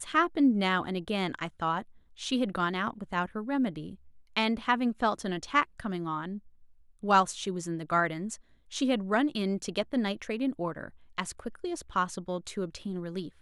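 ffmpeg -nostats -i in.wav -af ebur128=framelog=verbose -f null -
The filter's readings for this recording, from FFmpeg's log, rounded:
Integrated loudness:
  I:         -30.6 LUFS
  Threshold: -40.8 LUFS
Loudness range:
  LRA:         3.7 LU
  Threshold: -51.0 LUFS
  LRA low:   -33.2 LUFS
  LRA high:  -29.4 LUFS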